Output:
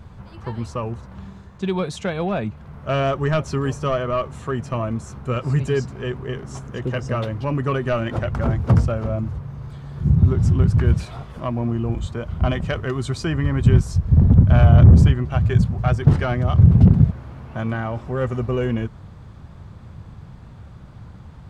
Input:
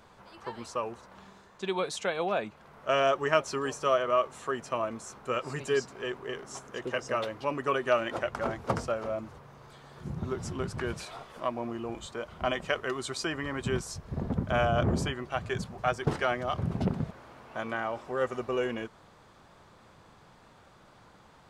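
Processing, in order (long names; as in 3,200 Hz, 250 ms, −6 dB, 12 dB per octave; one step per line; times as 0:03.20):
parametric band 76 Hz +10 dB 2.3 octaves
soft clipping −17.5 dBFS, distortion −16 dB
bass and treble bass +13 dB, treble −3 dB
level +3.5 dB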